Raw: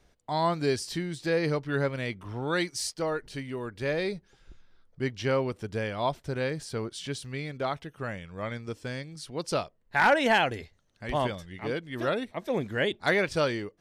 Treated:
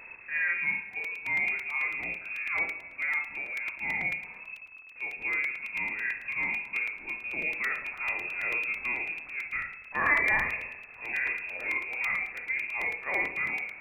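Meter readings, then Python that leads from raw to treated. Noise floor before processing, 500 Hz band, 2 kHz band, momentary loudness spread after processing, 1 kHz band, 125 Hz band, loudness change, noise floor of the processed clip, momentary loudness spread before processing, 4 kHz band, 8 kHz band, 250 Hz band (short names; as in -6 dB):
-66 dBFS, -17.0 dB, +5.5 dB, 8 LU, -8.0 dB, -19.0 dB, 0.0 dB, -48 dBFS, 12 LU, -14.5 dB, under -15 dB, -16.0 dB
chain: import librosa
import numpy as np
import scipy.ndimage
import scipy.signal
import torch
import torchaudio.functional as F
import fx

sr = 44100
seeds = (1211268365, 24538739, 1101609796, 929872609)

p1 = x + 0.5 * 10.0 ** (-39.5 / 20.0) * np.sign(x)
p2 = fx.dynamic_eq(p1, sr, hz=1400.0, q=0.93, threshold_db=-41.0, ratio=4.0, max_db=-4)
p3 = fx.hpss(p2, sr, part='harmonic', gain_db=6)
p4 = fx.rider(p3, sr, range_db=10, speed_s=2.0)
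p5 = p4 + fx.room_early_taps(p4, sr, ms=(26, 59), db=(-9.0, -7.0), dry=0)
p6 = fx.rev_schroeder(p5, sr, rt60_s=1.2, comb_ms=25, drr_db=9.5)
p7 = fx.freq_invert(p6, sr, carrier_hz=2600)
p8 = fx.buffer_crackle(p7, sr, first_s=0.93, period_s=0.11, block=128, kind='repeat')
y = p8 * librosa.db_to_amplitude(-9.0)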